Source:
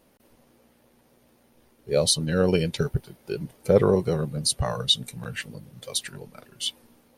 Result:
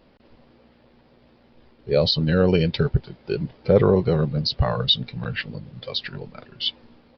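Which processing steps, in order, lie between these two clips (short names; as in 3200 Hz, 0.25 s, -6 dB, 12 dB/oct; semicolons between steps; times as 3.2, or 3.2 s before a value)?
low shelf 100 Hz +5.5 dB; in parallel at +0.5 dB: limiter -16 dBFS, peak gain reduction 10 dB; on the sum: downsampling 11025 Hz; gain -1.5 dB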